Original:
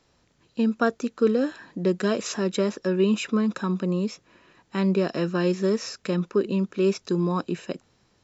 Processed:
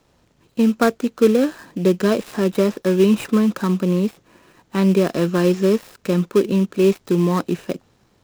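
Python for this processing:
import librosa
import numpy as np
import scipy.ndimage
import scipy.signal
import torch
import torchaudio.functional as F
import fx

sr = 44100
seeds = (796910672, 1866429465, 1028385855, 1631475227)

p1 = fx.dead_time(x, sr, dead_ms=0.097)
p2 = fx.sample_hold(p1, sr, seeds[0], rate_hz=2900.0, jitter_pct=20)
p3 = p1 + (p2 * librosa.db_to_amplitude(-8.5))
y = p3 * librosa.db_to_amplitude(4.0)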